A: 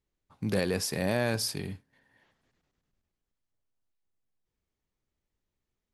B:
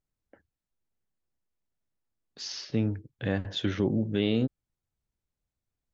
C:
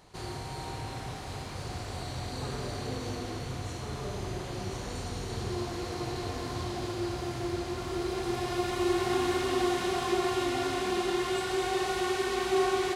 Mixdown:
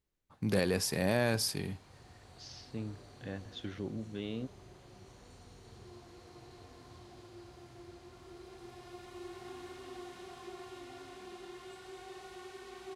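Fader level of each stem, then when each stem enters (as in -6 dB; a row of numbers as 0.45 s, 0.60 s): -1.5 dB, -13.0 dB, -19.0 dB; 0.00 s, 0.00 s, 0.35 s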